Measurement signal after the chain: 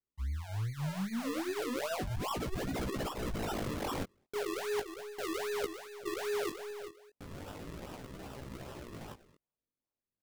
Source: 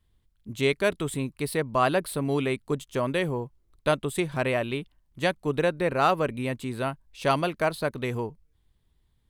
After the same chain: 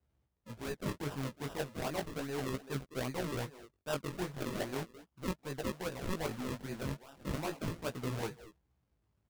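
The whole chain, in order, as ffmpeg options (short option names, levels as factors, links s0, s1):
-filter_complex "[0:a]highpass=f=64:w=0.5412,highpass=f=64:w=1.3066,bandreject=f=3500:w=7.5,areverse,acompressor=threshold=0.0282:ratio=10,areverse,asplit=2[s0][s1];[s1]adelay=210,highpass=300,lowpass=3400,asoftclip=type=hard:threshold=0.0282,volume=0.251[s2];[s0][s2]amix=inputs=2:normalize=0,acrusher=samples=40:mix=1:aa=0.000001:lfo=1:lforange=40:lforate=2.5,flanger=delay=15:depth=6.9:speed=0.36,aeval=exprs='0.0631*(cos(1*acos(clip(val(0)/0.0631,-1,1)))-cos(1*PI/2))+0.01*(cos(2*acos(clip(val(0)/0.0631,-1,1)))-cos(2*PI/2))+0.00158*(cos(7*acos(clip(val(0)/0.0631,-1,1)))-cos(7*PI/2))+0.00251*(cos(8*acos(clip(val(0)/0.0631,-1,1)))-cos(8*PI/2))':c=same"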